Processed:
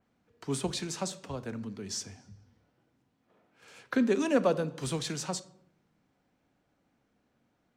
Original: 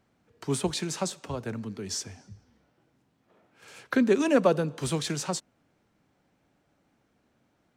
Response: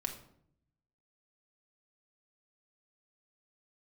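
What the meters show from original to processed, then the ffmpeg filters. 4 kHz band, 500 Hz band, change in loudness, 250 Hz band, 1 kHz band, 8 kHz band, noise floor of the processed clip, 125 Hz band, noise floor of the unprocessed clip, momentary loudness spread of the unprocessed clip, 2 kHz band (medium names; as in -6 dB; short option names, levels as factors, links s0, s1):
-3.0 dB, -4.0 dB, -4.0 dB, -3.5 dB, -4.0 dB, -3.5 dB, -75 dBFS, -4.5 dB, -71 dBFS, 14 LU, -4.0 dB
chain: -filter_complex "[0:a]asplit=2[s0][s1];[1:a]atrim=start_sample=2205,lowpass=8600[s2];[s1][s2]afir=irnorm=-1:irlink=0,volume=0.501[s3];[s0][s3]amix=inputs=2:normalize=0,adynamicequalizer=threshold=0.00891:dfrequency=4000:dqfactor=0.7:tfrequency=4000:tqfactor=0.7:attack=5:release=100:ratio=0.375:range=1.5:mode=boostabove:tftype=highshelf,volume=0.422"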